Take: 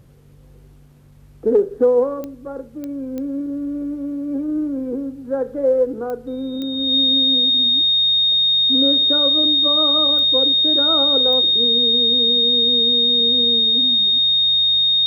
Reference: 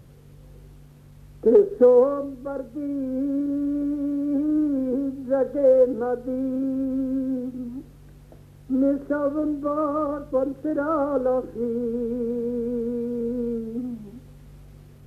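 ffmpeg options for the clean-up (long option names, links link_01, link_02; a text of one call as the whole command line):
ffmpeg -i in.wav -af "adeclick=threshold=4,bandreject=frequency=3700:width=30" out.wav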